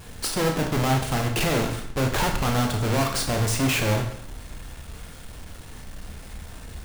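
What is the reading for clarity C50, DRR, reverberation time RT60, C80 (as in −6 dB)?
6.0 dB, 2.5 dB, 0.65 s, 9.5 dB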